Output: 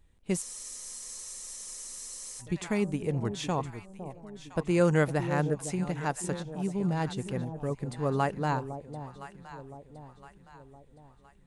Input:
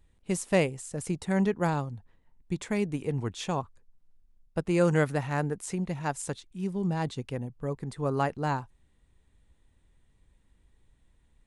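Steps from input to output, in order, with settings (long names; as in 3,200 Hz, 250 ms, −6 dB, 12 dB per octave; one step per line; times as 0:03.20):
delay that swaps between a low-pass and a high-pass 508 ms, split 800 Hz, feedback 65%, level −10 dB
frozen spectrum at 0:00.43, 1.98 s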